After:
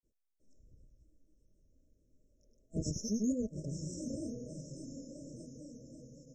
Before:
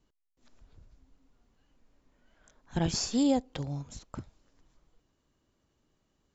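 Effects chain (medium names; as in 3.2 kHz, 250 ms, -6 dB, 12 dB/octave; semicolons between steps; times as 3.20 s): echo that smears into a reverb 961 ms, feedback 51%, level -8 dB; granulator 156 ms, grains 18 per s, pitch spread up and down by 3 st; FFT band-reject 650–5200 Hz; trim -2 dB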